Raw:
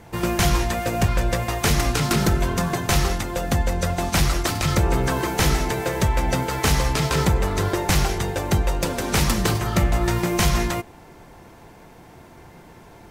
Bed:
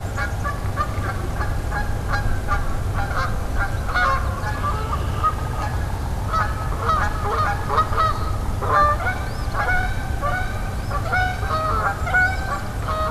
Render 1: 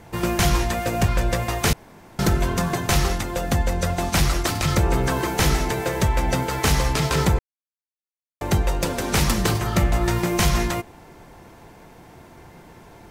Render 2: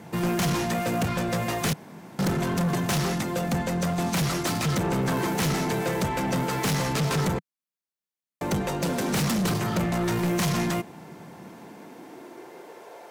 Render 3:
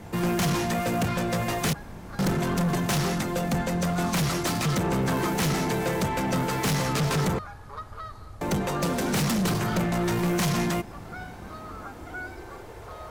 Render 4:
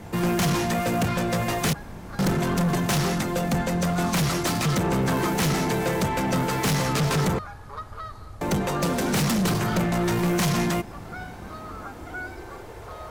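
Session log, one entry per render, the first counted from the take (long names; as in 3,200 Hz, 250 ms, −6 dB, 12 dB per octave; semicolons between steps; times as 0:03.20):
0:01.73–0:02.19: fill with room tone; 0:07.39–0:08.41: silence
high-pass filter sweep 170 Hz → 540 Hz, 0:11.33–0:13.05; soft clipping −21.5 dBFS, distortion −7 dB
mix in bed −20 dB
level +2 dB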